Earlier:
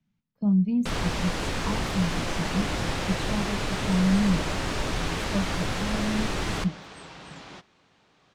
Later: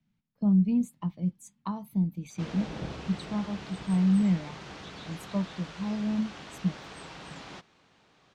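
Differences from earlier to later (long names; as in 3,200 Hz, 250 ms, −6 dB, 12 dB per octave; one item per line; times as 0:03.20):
first sound: muted
reverb: off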